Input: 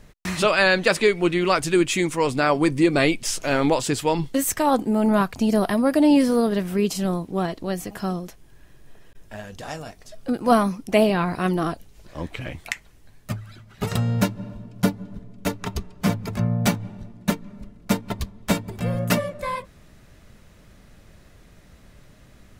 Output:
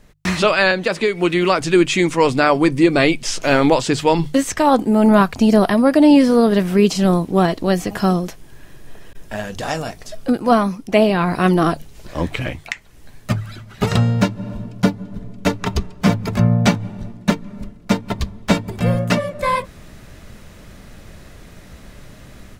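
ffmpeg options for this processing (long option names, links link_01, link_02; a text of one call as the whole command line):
ffmpeg -i in.wav -filter_complex "[0:a]asettb=1/sr,asplit=3[link_01][link_02][link_03];[link_01]atrim=end=0.714[link_04];[link_02]atrim=start=0.71:end=1.61,asetpts=PTS-STARTPTS,afade=type=in:duration=0.004:curve=qsin,afade=type=out:start_time=0.896:duration=0.004:curve=qsin,acrossover=split=82|1000[link_05][link_06][link_07];[link_05]acompressor=threshold=-54dB:ratio=4[link_08];[link_06]acompressor=threshold=-20dB:ratio=4[link_09];[link_07]acompressor=threshold=-26dB:ratio=4[link_10];[link_08][link_09][link_10]amix=inputs=3:normalize=0[link_11];[link_03]atrim=start=1.606[link_12];[link_04][link_11]acrossfade=duration=0.004:curve1=hsin:curve2=qsin[link_13];[link_13][link_12]acrossfade=duration=0.004:curve1=qsin:curve2=hsin,acrossover=split=7000[link_14][link_15];[link_15]acompressor=threshold=-49dB:ratio=4:attack=1:release=60[link_16];[link_14][link_16]amix=inputs=2:normalize=0,bandreject=frequency=50:width_type=h:width=6,bandreject=frequency=100:width_type=h:width=6,bandreject=frequency=150:width_type=h:width=6,dynaudnorm=framelen=140:gausssize=3:maxgain=11.5dB,volume=-1dB" out.wav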